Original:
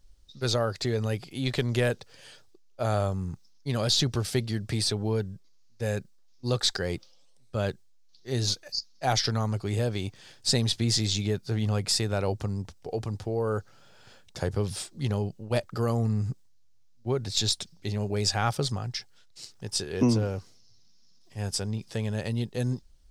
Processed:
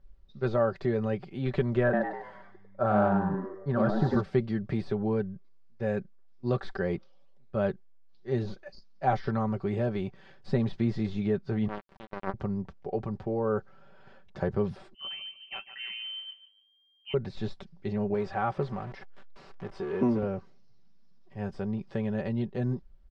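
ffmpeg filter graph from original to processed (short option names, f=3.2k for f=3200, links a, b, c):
-filter_complex "[0:a]asettb=1/sr,asplit=3[a][b][c];[a]atrim=end=1.834[d];[b]atrim=start=1.83:end=4.21,asetpts=PTS-STARTPTS,afade=t=in:d=0.004:c=qsin,afade=t=out:st=2.376:d=0.004:c=qsin,highshelf=f=1.9k:t=q:w=3:g=-6,asoftclip=type=hard:threshold=-14.5dB,asplit=7[e][f][g][h][i][j][k];[f]adelay=99,afreqshift=98,volume=-3.5dB[l];[g]adelay=198,afreqshift=196,volume=-10.1dB[m];[h]adelay=297,afreqshift=294,volume=-16.6dB[n];[i]adelay=396,afreqshift=392,volume=-23.2dB[o];[j]adelay=495,afreqshift=490,volume=-29.7dB[p];[k]adelay=594,afreqshift=588,volume=-36.3dB[q];[e][l][m][n][o][p][q]amix=inputs=7:normalize=0,atrim=end_sample=104958[r];[c]atrim=start=4.206[s];[d][r]acrossfade=d=0.004:c1=hsin:c2=qsin[t];[t][s]acrossfade=d=0.004:c1=qsin:c2=hsin,asettb=1/sr,asplit=3[u][v][w];[u]atrim=end=11.684[x];[v]atrim=start=11.68:end=12.34,asetpts=PTS-STARTPTS,afade=t=in:d=0.004:c=qsin,afade=t=out:st=0.656:d=0.004:c=qsin,acrossover=split=6100[y][z];[z]acompressor=threshold=-41dB:ratio=4:attack=1:release=60[aa];[y][aa]amix=inputs=2:normalize=0,acrusher=bits=2:mix=0:aa=0.5[ab];[w]atrim=start=12.336[ac];[x][ab]acrossfade=d=0.004:c1=hsin:c2=qsin[ad];[ad][ac]acrossfade=d=0.004:c1=qsin:c2=hsin,asettb=1/sr,asplit=3[ae][af][ag];[ae]atrim=end=14.944[ah];[af]atrim=start=14.94:end=17.14,asetpts=PTS-STARTPTS,afade=t=in:d=0.004:c=qsin,afade=t=out:st=2.196:d=0.004:c=qsin,flanger=delay=5:depth=8:regen=50:speed=1.9:shape=triangular,aecho=1:1:146|292|438:0.2|0.0519|0.0135,atrim=end_sample=97020,lowpass=f=2.7k:t=q:w=0.5098,lowpass=f=2.7k:t=q:w=0.6013,lowpass=f=2.7k:t=q:w=0.9,lowpass=f=2.7k:t=q:w=2.563,afreqshift=-3200[ai];[ag]atrim=start=17.136[aj];[ah][ai]acrossfade=d=0.004:c1=hsin:c2=qsin[ak];[ak][aj]acrossfade=d=0.004:c1=qsin:c2=hsin,asettb=1/sr,asplit=3[al][am][an];[al]atrim=end=18.144[ao];[am]atrim=start=18.14:end=20.23,asetpts=PTS-STARTPTS,afade=t=in:d=0.004:c=qsin,afade=t=out:st=2.086:d=0.004:c=qsin,aeval=exprs='val(0)+0.5*0.0237*sgn(val(0))':c=same,lowshelf=f=240:g=-9[ap];[an]atrim=start=20.226[aq];[ao][ap]acrossfade=d=0.004:c1=hsin:c2=qsin[ar];[ar][aq]acrossfade=d=0.004:c1=qsin:c2=hsin,deesser=0.9,lowpass=1.7k,aecho=1:1:5.2:0.58"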